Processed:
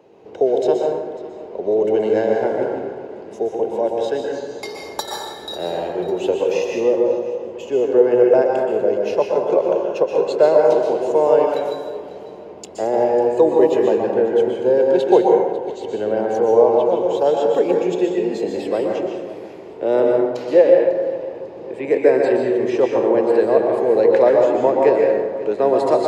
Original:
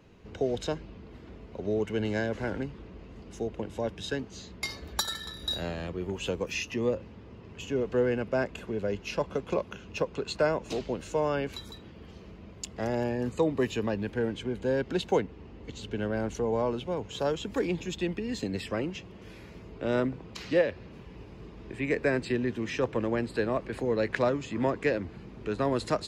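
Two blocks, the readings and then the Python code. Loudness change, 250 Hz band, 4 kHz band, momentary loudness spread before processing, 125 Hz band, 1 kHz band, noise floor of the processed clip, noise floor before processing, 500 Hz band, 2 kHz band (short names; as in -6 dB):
+13.5 dB, +9.0 dB, n/a, 19 LU, -2.0 dB, +14.0 dB, -36 dBFS, -48 dBFS, +16.0 dB, +3.5 dB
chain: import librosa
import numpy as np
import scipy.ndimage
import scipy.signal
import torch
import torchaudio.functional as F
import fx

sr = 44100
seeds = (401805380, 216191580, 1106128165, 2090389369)

p1 = scipy.signal.sosfilt(scipy.signal.butter(2, 170.0, 'highpass', fs=sr, output='sos'), x)
p2 = fx.band_shelf(p1, sr, hz=560.0, db=12.5, octaves=1.7)
p3 = p2 + fx.echo_feedback(p2, sr, ms=547, feedback_pct=41, wet_db=-18, dry=0)
y = fx.rev_plate(p3, sr, seeds[0], rt60_s=1.3, hf_ratio=0.5, predelay_ms=110, drr_db=-0.5)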